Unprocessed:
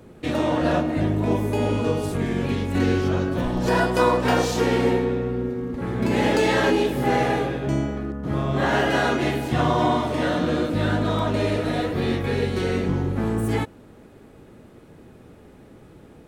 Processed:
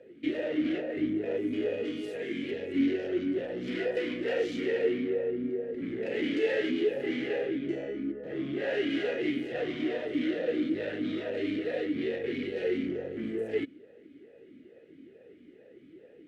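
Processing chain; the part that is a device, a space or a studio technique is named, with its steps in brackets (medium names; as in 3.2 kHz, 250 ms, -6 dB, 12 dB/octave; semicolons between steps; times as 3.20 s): 1.85–2.51 s: tilt EQ +2 dB/octave; talk box (valve stage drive 24 dB, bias 0.6; talking filter e-i 2.3 Hz); trim +7.5 dB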